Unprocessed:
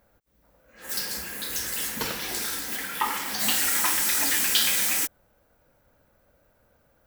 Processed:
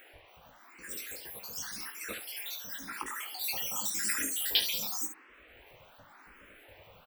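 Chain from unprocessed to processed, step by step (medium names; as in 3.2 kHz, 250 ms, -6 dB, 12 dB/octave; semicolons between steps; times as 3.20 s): random holes in the spectrogram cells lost 68%; upward compressor, threshold -41 dBFS; band noise 270–2700 Hz -54 dBFS; early reflections 19 ms -7.5 dB, 70 ms -11 dB; reverberation, pre-delay 41 ms, DRR 16.5 dB; barber-pole phaser +0.91 Hz; trim -2.5 dB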